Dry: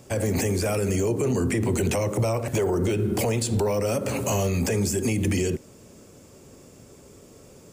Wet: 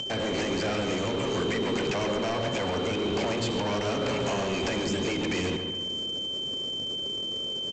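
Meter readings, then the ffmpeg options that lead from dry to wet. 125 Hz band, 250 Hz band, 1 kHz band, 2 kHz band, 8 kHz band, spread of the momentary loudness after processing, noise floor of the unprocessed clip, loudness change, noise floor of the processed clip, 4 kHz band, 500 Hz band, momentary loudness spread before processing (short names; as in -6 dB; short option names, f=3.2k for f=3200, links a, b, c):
-9.5 dB, -3.5 dB, +1.0 dB, +1.5 dB, -9.0 dB, 2 LU, -50 dBFS, -4.0 dB, -33 dBFS, +11.0 dB, -3.5 dB, 2 LU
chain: -filter_complex "[0:a]acrossover=split=4400[a][b];[b]acompressor=threshold=-45dB:ratio=4:attack=1:release=60[c];[a][c]amix=inputs=2:normalize=0,aeval=exprs='val(0)+0.00891*sin(2*PI*3100*n/s)':c=same,afftfilt=real='re*lt(hypot(re,im),0.398)':imag='im*lt(hypot(re,im),0.398)':win_size=1024:overlap=0.75,lowshelf=f=110:g=-11.5,asplit=2[d][e];[e]acompressor=mode=upward:threshold=-33dB:ratio=2.5,volume=-3dB[f];[d][f]amix=inputs=2:normalize=0,alimiter=limit=-18.5dB:level=0:latency=1:release=129,anlmdn=0.251,aresample=16000,asoftclip=type=hard:threshold=-29.5dB,aresample=44100,asplit=2[g][h];[h]adelay=140,lowpass=f=2.5k:p=1,volume=-6.5dB,asplit=2[i][j];[j]adelay=140,lowpass=f=2.5k:p=1,volume=0.53,asplit=2[k][l];[l]adelay=140,lowpass=f=2.5k:p=1,volume=0.53,asplit=2[m][n];[n]adelay=140,lowpass=f=2.5k:p=1,volume=0.53,asplit=2[o][p];[p]adelay=140,lowpass=f=2.5k:p=1,volume=0.53,asplit=2[q][r];[r]adelay=140,lowpass=f=2.5k:p=1,volume=0.53,asplit=2[s][t];[t]adelay=140,lowpass=f=2.5k:p=1,volume=0.53[u];[g][i][k][m][o][q][s][u]amix=inputs=8:normalize=0,volume=2.5dB"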